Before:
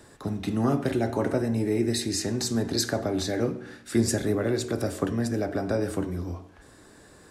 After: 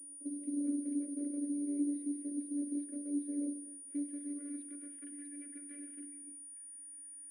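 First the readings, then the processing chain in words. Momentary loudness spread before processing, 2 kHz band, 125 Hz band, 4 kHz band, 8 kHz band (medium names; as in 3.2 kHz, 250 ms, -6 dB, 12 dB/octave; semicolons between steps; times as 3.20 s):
7 LU, under -25 dB, under -40 dB, under -40 dB, -8.5 dB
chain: one-sided wavefolder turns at -21.5 dBFS; hum notches 60/120/180/240 Hz; spectral replace 0.38–0.60 s, 360–1200 Hz both; resonant low shelf 560 Hz +8 dB, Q 3; robot voice 289 Hz; flange 0.3 Hz, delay 6 ms, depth 9.9 ms, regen -89%; band-pass sweep 560 Hz -> 1.8 kHz, 3.48–5.22 s; vowel filter i; on a send: thinning echo 244 ms, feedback 58%, high-pass 220 Hz, level -20 dB; on the sum: class-D stage that switches slowly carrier 9.5 kHz; trim +2.5 dB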